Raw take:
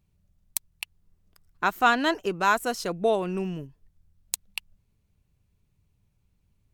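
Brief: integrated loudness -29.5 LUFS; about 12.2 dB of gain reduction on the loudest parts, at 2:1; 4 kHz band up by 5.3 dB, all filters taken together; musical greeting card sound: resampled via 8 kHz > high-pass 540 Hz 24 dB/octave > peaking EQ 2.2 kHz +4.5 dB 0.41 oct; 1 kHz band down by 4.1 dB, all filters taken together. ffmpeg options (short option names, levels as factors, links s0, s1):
-af "equalizer=f=1000:t=o:g=-6,equalizer=f=4000:t=o:g=6.5,acompressor=threshold=0.00891:ratio=2,aresample=8000,aresample=44100,highpass=f=540:w=0.5412,highpass=f=540:w=1.3066,equalizer=f=2200:t=o:w=0.41:g=4.5,volume=3.35"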